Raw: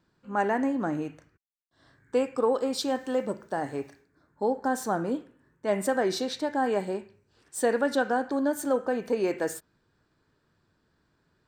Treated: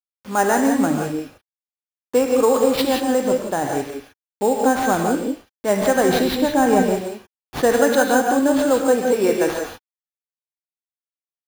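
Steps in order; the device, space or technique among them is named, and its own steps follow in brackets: early 8-bit sampler (sample-rate reducer 7.9 kHz, jitter 0%; bit crusher 8-bit); 6.09–6.83 s: tone controls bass +9 dB, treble -2 dB; gated-style reverb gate 200 ms rising, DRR 2.5 dB; trim +7.5 dB

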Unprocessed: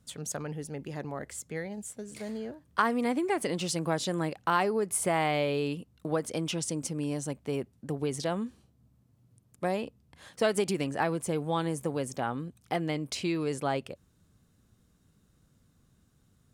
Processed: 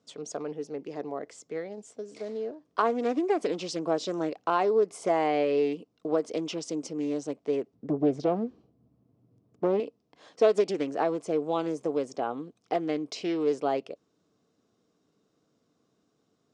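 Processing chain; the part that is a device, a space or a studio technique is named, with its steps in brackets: 7.73–9.80 s: RIAA curve playback; full-range speaker at full volume (loudspeaker Doppler distortion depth 0.56 ms; cabinet simulation 230–6800 Hz, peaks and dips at 300 Hz +7 dB, 440 Hz +10 dB, 680 Hz +8 dB, 1.1 kHz +4 dB, 1.7 kHz -4 dB, 5.3 kHz +4 dB); trim -3.5 dB

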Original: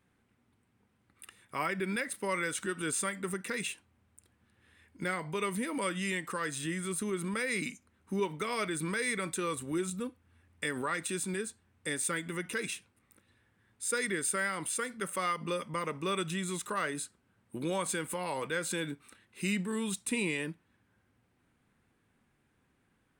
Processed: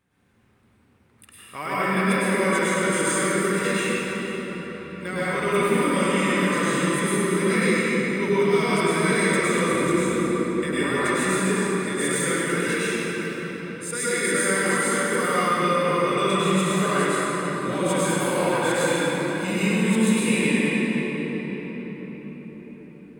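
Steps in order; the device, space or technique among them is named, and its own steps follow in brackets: cathedral (reverberation RT60 5.8 s, pre-delay 96 ms, DRR -12 dB)

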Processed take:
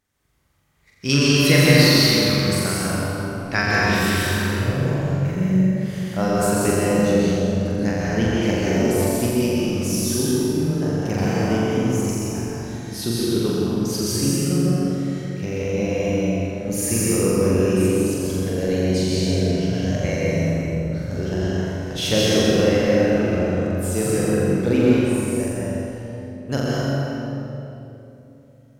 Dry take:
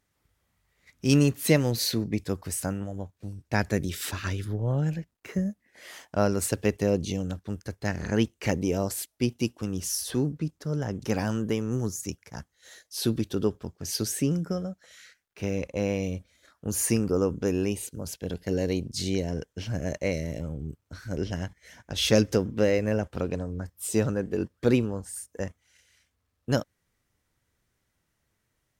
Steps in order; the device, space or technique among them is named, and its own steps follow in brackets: time-frequency box 1.01–4.00 s, 1–5.8 kHz +8 dB; tunnel (flutter echo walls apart 7.4 m, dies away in 0.98 s; reverberation RT60 3.1 s, pre-delay 115 ms, DRR -4.5 dB); trim -1 dB

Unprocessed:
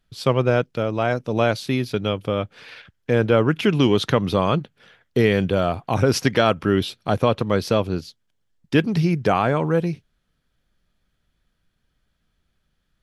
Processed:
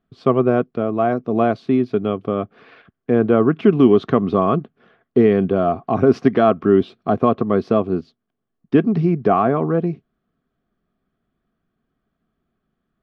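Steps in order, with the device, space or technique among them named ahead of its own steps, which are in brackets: inside a cardboard box (low-pass 3.7 kHz 12 dB/octave; small resonant body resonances 250/380/670/1100 Hz, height 18 dB, ringing for 25 ms); trim -11.5 dB

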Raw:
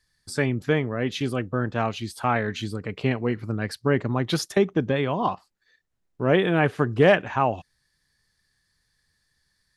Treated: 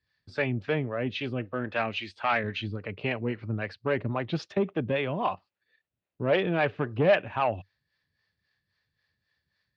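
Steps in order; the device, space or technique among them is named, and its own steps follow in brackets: 1.45–2.44 s: ten-band graphic EQ 125 Hz -8 dB, 2 kHz +8 dB, 8 kHz +8 dB; guitar amplifier with harmonic tremolo (harmonic tremolo 3.7 Hz, depth 70%, crossover 410 Hz; saturation -16 dBFS, distortion -15 dB; cabinet simulation 81–4200 Hz, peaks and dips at 96 Hz +6 dB, 590 Hz +6 dB, 2.6 kHz +7 dB); trim -2 dB

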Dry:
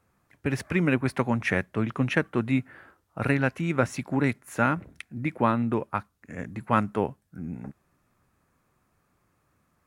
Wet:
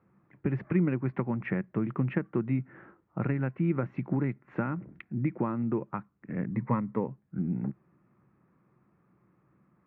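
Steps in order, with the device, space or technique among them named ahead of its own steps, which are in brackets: bass amplifier (compression 3:1, threshold -32 dBFS, peak gain reduction 12 dB; cabinet simulation 73–2100 Hz, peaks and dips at 90 Hz -7 dB, 130 Hz +8 dB, 190 Hz +10 dB, 340 Hz +8 dB, 680 Hz -3 dB, 1.6 kHz -4 dB); 6.54–7.08 s: rippled EQ curve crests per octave 0.99, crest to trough 10 dB

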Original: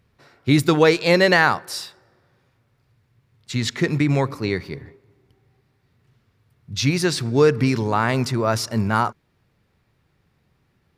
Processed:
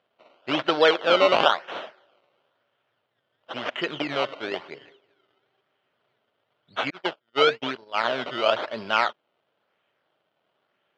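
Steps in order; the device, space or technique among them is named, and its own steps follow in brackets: 6.90–8.04 s: gate -18 dBFS, range -41 dB; circuit-bent sampling toy (decimation with a swept rate 18×, swing 100% 0.99 Hz; cabinet simulation 450–4200 Hz, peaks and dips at 610 Hz +8 dB, 1.4 kHz +5 dB, 3.1 kHz +9 dB); trim -3.5 dB

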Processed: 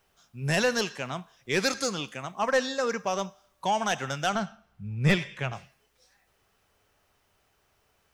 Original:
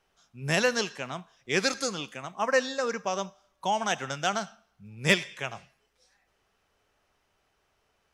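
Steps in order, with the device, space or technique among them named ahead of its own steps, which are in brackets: open-reel tape (saturation -18 dBFS, distortion -12 dB; peaking EQ 99 Hz +4.5 dB 1.12 oct; white noise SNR 46 dB); 4.35–5.53 s: tone controls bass +7 dB, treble -9 dB; trim +2 dB

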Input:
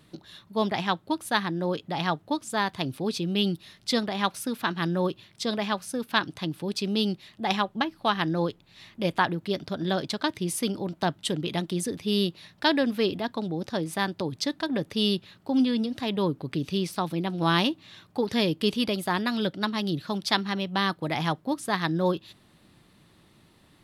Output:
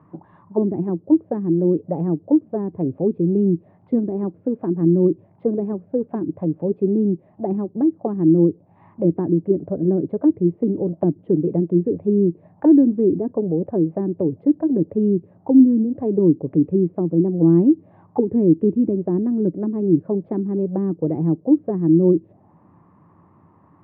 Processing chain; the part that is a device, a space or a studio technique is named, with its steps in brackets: envelope filter bass rig (touch-sensitive low-pass 340–1100 Hz down, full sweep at -23.5 dBFS; cabinet simulation 76–2300 Hz, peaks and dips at 95 Hz +9 dB, 170 Hz +6 dB, 290 Hz +4 dB, 1.4 kHz -5 dB); trim +2 dB

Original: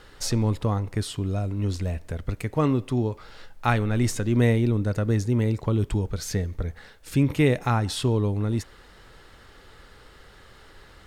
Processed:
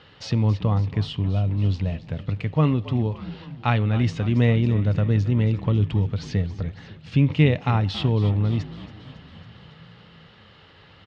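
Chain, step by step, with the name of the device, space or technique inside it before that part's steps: frequency-shifting delay pedal into a guitar cabinet (frequency-shifting echo 276 ms, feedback 65%, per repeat -46 Hz, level -15 dB; cabinet simulation 95–4500 Hz, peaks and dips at 99 Hz +8 dB, 160 Hz +9 dB, 370 Hz -5 dB, 1.5 kHz -4 dB, 2.9 kHz +7 dB)

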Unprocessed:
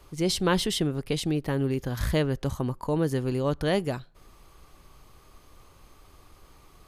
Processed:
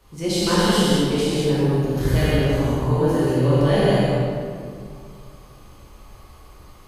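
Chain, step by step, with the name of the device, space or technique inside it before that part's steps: 1.38–1.95 s: peaking EQ 4 kHz -> 1.3 kHz -12 dB 1.4 oct; gated-style reverb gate 250 ms flat, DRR -4 dB; stairwell (reverberation RT60 2.2 s, pre-delay 10 ms, DRR -5 dB); trim -4 dB

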